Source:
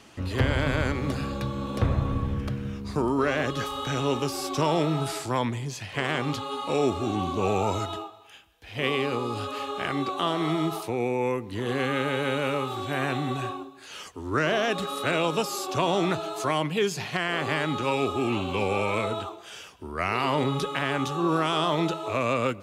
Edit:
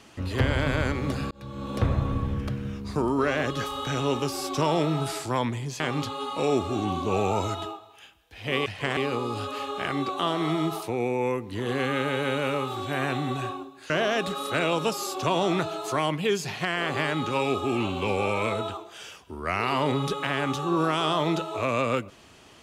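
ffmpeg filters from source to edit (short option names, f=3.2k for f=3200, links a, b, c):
-filter_complex "[0:a]asplit=6[a][b][c][d][e][f];[a]atrim=end=1.31,asetpts=PTS-STARTPTS,afade=t=out:st=1.306:d=0.004:c=hsin[g];[b]atrim=start=1.31:end=5.802,asetpts=PTS-STARTPTS,afade=t=in:d=0.44[h];[c]atrim=start=6.108:end=8.972[i];[d]atrim=start=5.798:end=6.112[j];[e]atrim=start=8.968:end=13.902[k];[f]atrim=start=14.418[l];[g][h]concat=n=2:v=0:a=1[m];[m][i]acrossfade=d=0.004:c1=hsin:c2=hsin[n];[n][j]acrossfade=d=0.004:c1=hsin:c2=hsin[o];[o][k]acrossfade=d=0.004:c1=hsin:c2=hsin[p];[p][l]acrossfade=d=0.004:c1=hsin:c2=hsin"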